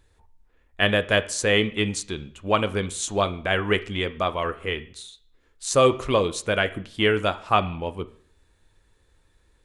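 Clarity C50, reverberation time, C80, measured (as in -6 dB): 17.0 dB, 0.55 s, 20.5 dB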